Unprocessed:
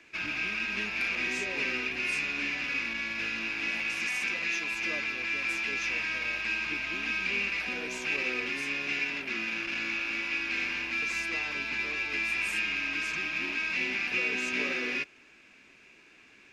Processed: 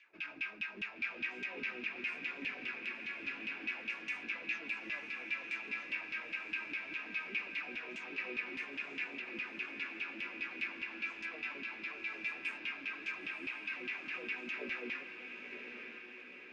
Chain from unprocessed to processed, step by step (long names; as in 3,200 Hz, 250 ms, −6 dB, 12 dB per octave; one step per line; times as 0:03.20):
auto-filter band-pass saw down 4.9 Hz 200–3,200 Hz
feedback delay with all-pass diffusion 983 ms, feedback 57%, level −7 dB
level −3 dB